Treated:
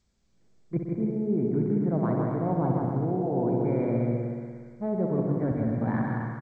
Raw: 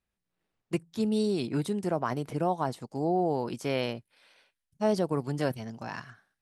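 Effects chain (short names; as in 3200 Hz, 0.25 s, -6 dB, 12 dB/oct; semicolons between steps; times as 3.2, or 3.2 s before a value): tilt shelf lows +8.5 dB, about 660 Hz; reverse; compressor 12:1, threshold -32 dBFS, peak gain reduction 15 dB; reverse; brick-wall FIR low-pass 2400 Hz; bouncing-ball echo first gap 0.16 s, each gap 0.65×, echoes 5; spring tank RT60 1.7 s, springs 59 ms, chirp 40 ms, DRR 2.5 dB; gain +6.5 dB; G.722 64 kbps 16000 Hz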